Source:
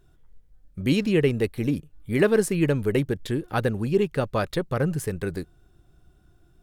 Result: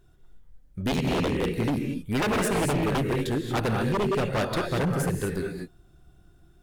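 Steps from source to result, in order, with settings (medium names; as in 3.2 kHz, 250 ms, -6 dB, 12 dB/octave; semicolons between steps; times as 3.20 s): 0.91–1.56 s: ring modulator 41 Hz; gated-style reverb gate 260 ms rising, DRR 2.5 dB; wavefolder -19.5 dBFS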